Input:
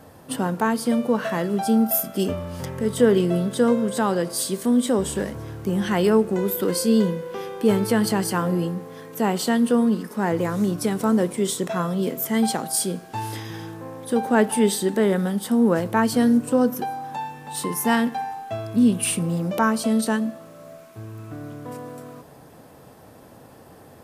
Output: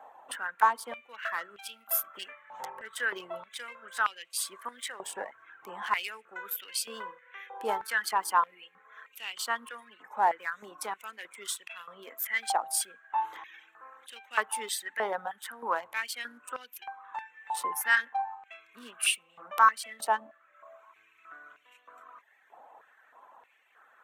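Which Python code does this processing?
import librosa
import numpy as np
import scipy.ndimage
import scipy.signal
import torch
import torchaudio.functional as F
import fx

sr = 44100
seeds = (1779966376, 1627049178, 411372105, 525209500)

y = fx.wiener(x, sr, points=9)
y = fx.dereverb_blind(y, sr, rt60_s=0.87)
y = fx.filter_held_highpass(y, sr, hz=3.2, low_hz=830.0, high_hz=2700.0)
y = y * librosa.db_to_amplitude(-5.5)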